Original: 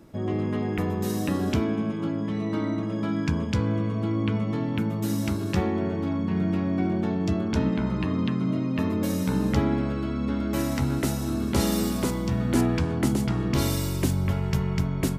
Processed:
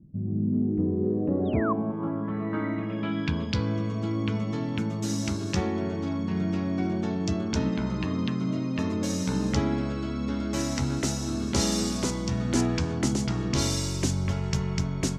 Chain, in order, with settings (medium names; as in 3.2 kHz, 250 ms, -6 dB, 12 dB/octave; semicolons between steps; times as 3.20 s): painted sound fall, 1.45–1.73 s, 1–3.9 kHz -21 dBFS; treble shelf 6.1 kHz +5 dB; low-pass sweep 170 Hz -> 6.3 kHz, 0.23–3.88 s; trim -2.5 dB